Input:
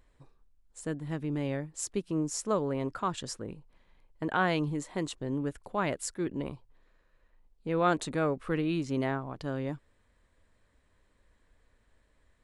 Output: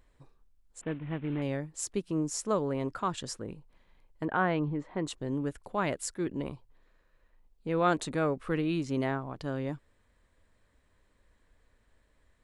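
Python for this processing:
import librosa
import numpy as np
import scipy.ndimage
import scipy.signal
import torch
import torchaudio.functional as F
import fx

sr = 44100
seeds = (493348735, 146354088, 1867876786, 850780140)

y = fx.cvsd(x, sr, bps=16000, at=(0.81, 1.42))
y = fx.lowpass(y, sr, hz=2000.0, slope=12, at=(4.25, 5.07))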